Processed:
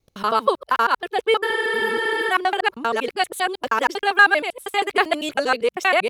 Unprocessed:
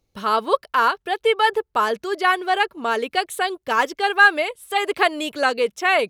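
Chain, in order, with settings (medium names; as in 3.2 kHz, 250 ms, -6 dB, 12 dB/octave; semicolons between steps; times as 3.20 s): time reversed locally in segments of 79 ms; spectral replace 1.47–2.28 s, 350–11000 Hz before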